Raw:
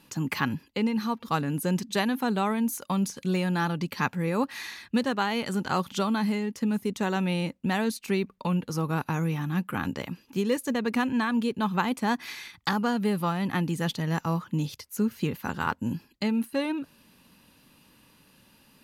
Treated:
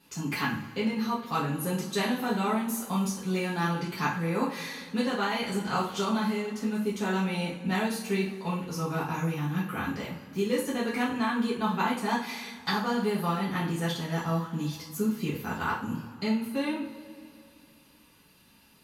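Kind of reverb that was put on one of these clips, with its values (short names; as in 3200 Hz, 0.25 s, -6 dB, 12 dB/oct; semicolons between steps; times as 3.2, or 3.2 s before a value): two-slope reverb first 0.4 s, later 2.7 s, from -20 dB, DRR -8 dB; gain -9 dB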